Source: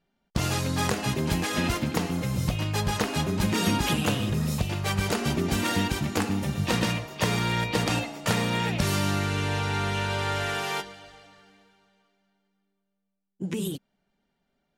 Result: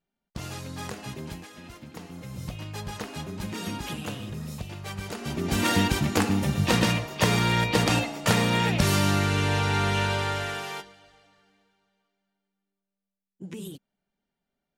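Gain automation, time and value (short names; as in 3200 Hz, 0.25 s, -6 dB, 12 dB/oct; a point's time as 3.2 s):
1.25 s -10 dB
1.57 s -20 dB
2.44 s -9 dB
5.17 s -9 dB
5.65 s +3 dB
10.04 s +3 dB
10.92 s -8 dB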